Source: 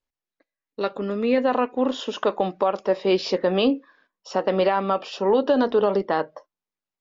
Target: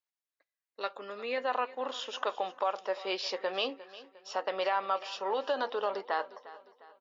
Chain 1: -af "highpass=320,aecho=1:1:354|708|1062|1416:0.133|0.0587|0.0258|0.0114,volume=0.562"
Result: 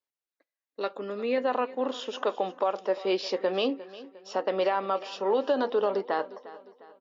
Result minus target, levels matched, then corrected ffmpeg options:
250 Hz band +7.5 dB
-af "highpass=760,aecho=1:1:354|708|1062|1416:0.133|0.0587|0.0258|0.0114,volume=0.562"

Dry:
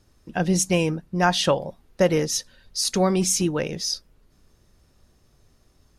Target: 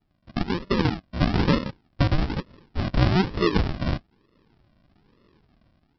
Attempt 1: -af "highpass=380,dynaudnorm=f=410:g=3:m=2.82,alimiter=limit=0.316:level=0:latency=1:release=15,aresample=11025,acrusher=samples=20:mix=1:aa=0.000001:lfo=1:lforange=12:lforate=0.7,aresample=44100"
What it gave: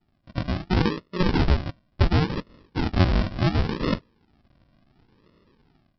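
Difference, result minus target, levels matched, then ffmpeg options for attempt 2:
decimation with a swept rate: distortion -24 dB
-af "highpass=380,dynaudnorm=f=410:g=3:m=2.82,alimiter=limit=0.316:level=0:latency=1:release=15,aresample=11025,acrusher=samples=20:mix=1:aa=0.000001:lfo=1:lforange=12:lforate=1.1,aresample=44100"

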